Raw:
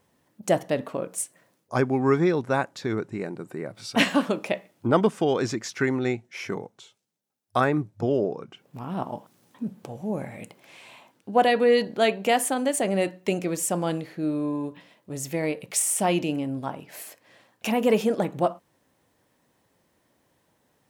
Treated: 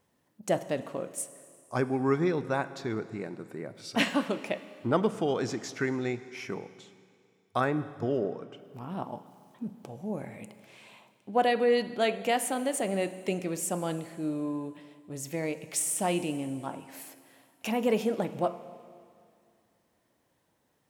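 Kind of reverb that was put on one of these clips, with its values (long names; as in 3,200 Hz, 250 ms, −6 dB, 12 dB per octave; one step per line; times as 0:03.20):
four-comb reverb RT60 2.3 s, combs from 33 ms, DRR 13.5 dB
level −5.5 dB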